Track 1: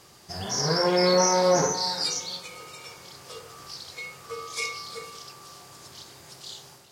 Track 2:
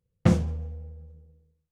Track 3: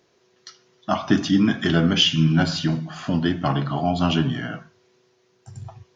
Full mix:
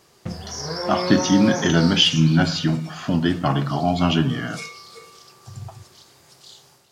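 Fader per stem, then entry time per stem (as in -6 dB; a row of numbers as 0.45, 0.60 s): -4.5, -11.5, +1.5 dB; 0.00, 0.00, 0.00 s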